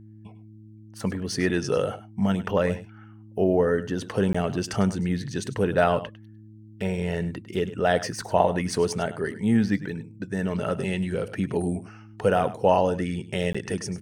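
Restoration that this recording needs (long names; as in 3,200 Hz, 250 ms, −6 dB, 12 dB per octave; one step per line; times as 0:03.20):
hum removal 107.8 Hz, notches 3
repair the gap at 0:04.33/0:13.53, 15 ms
echo removal 101 ms −15 dB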